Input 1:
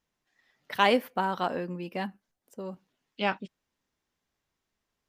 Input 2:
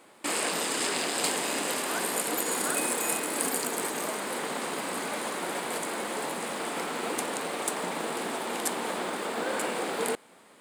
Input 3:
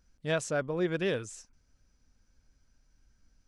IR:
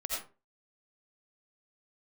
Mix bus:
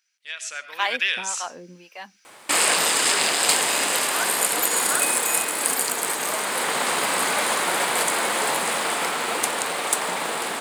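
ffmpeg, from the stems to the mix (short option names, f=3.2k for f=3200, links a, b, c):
-filter_complex "[0:a]lowshelf=f=440:g=-11.5,acrossover=split=530[a][b];[a]aeval=exprs='val(0)*(1-1/2+1/2*cos(2*PI*1.8*n/s))':c=same[c];[b]aeval=exprs='val(0)*(1-1/2-1/2*cos(2*PI*1.8*n/s))':c=same[d];[c][d]amix=inputs=2:normalize=0,volume=-12dB[e];[1:a]equalizer=f=260:w=0.61:g=-11,adelay=2250,volume=-1dB[f];[2:a]acompressor=threshold=-32dB:ratio=5,highpass=f=2.3k:t=q:w=1.8,volume=2.5dB,asplit=2[g][h];[h]volume=-15.5dB[i];[3:a]atrim=start_sample=2205[j];[i][j]afir=irnorm=-1:irlink=0[k];[e][f][g][k]amix=inputs=4:normalize=0,dynaudnorm=f=130:g=9:m=14dB"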